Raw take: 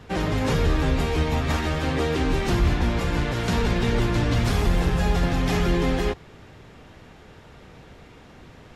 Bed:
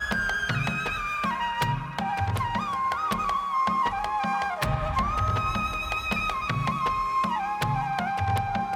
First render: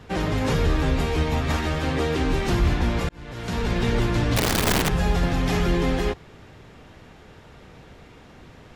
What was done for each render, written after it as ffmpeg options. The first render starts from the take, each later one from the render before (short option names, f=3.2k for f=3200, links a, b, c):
-filter_complex "[0:a]asettb=1/sr,asplit=3[a][b][c];[a]atrim=end=4.364[d];[b]atrim=start=4.36:end=4.9,asetpts=PTS-STARTPTS,afade=t=in:d=0.004:c=qsin,afade=t=out:st=0.536:d=0.004:c=qsin,aeval=exprs='(mod(6.31*val(0)+1,2)-1)/6.31':c=same[e];[c]atrim=start=4.896[f];[d][e]acrossfade=d=0.004:c1=hsin:c2=qsin[g];[g][f]acrossfade=d=0.004:c1=qsin:c2=hsin,asplit=2[h][i];[h]atrim=end=3.09,asetpts=PTS-STARTPTS,afade=t=out:st=3.086:d=0.004:c=hsin[j];[i]atrim=start=3.09,asetpts=PTS-STARTPTS,afade=t=in:d=0.73[k];[j][k]concat=n=2:v=0:a=1"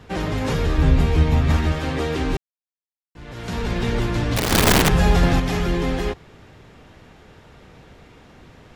-filter_complex "[0:a]asettb=1/sr,asplit=3[a][b][c];[a]atrim=end=0.784[d];[b]atrim=start=0.78:end=1.72,asetpts=PTS-STARTPTS,afade=t=in:d=0.004:c=qsin,afade=t=out:st=0.936:d=0.004:c=qsin,bass=f=250:g=8,treble=f=4k:g=-2[e];[c]atrim=start=1.716[f];[d][e]acrossfade=d=0.004:c1=hsin:c2=qsin[g];[g][f]acrossfade=d=0.004:c1=qsin:c2=hsin,asettb=1/sr,asplit=3[h][i][j];[h]atrim=end=4.514[k];[i]atrim=start=4.51:end=5.4,asetpts=PTS-STARTPTS,afade=t=in:d=0.004:c=qsin,afade=t=out:st=0.886:d=0.004:c=qsin,acontrast=53[l];[j]atrim=start=5.396[m];[k][l]acrossfade=d=0.004:c1=hsin:c2=qsin[n];[n][m]acrossfade=d=0.004:c1=qsin:c2=hsin,asplit=3[o][p][q];[o]atrim=end=2.37,asetpts=PTS-STARTPTS,afade=t=out:st=2.366:d=0.004:c=hsin[r];[p]atrim=start=2.37:end=3.15,asetpts=PTS-STARTPTS,volume=0[s];[q]atrim=start=3.15,asetpts=PTS-STARTPTS,afade=t=in:d=0.004:c=hsin[t];[r][s][t]concat=n=3:v=0:a=1"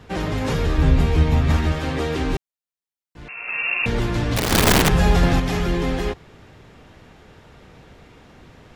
-filter_complex "[0:a]asettb=1/sr,asplit=3[a][b][c];[a]atrim=end=3.284[d];[b]atrim=start=3.28:end=3.86,asetpts=PTS-STARTPTS,afade=t=in:d=0.004:c=qsin,afade=t=out:st=0.576:d=0.004:c=qsin,lowpass=f=2.4k:t=q:w=0.5098,lowpass=f=2.4k:t=q:w=0.6013,lowpass=f=2.4k:t=q:w=0.9,lowpass=f=2.4k:t=q:w=2.563,afreqshift=-2800[e];[c]atrim=start=3.856[f];[d][e]acrossfade=d=0.004:c1=hsin:c2=qsin[g];[g][f]acrossfade=d=0.004:c1=qsin:c2=hsin"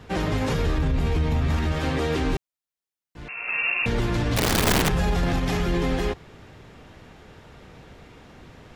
-af "alimiter=limit=-15.5dB:level=0:latency=1:release=53"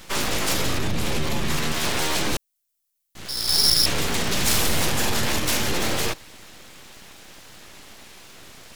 -af "aeval=exprs='abs(val(0))':c=same,crystalizer=i=5.5:c=0"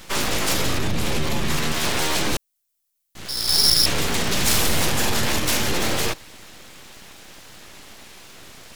-af "volume=1.5dB"